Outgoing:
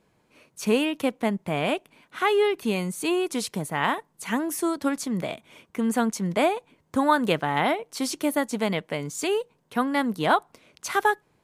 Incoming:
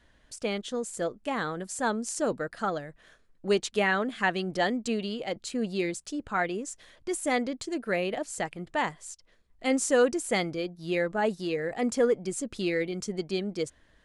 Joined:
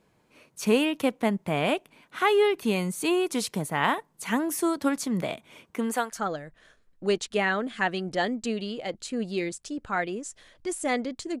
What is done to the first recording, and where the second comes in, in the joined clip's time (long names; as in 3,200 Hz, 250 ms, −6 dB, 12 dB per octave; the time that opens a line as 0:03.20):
outgoing
0:05.75–0:06.21: high-pass filter 170 Hz → 1,300 Hz
0:06.15: continue with incoming from 0:02.57, crossfade 0.12 s